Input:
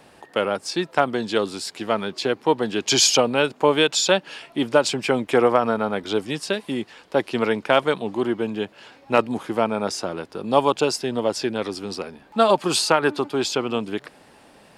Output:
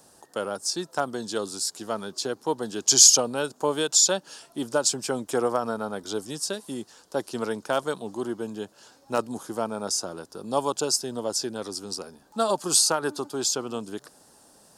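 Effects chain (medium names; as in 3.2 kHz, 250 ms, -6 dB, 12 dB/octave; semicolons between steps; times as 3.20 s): FFT filter 1.5 kHz 0 dB, 2.2 kHz -12 dB, 6.2 kHz +14 dB; trim -7.5 dB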